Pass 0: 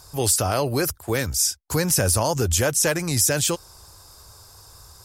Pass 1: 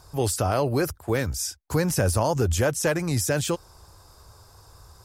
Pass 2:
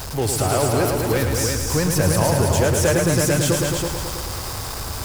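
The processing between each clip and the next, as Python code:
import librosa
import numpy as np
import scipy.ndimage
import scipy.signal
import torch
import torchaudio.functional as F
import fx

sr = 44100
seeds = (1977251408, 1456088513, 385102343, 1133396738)

y1 = fx.high_shelf(x, sr, hz=2700.0, db=-10.0)
y2 = y1 + 0.5 * 10.0 ** (-26.0 / 20.0) * np.sign(y1)
y2 = fx.echo_heads(y2, sr, ms=109, heads='all three', feedback_pct=45, wet_db=-6.5)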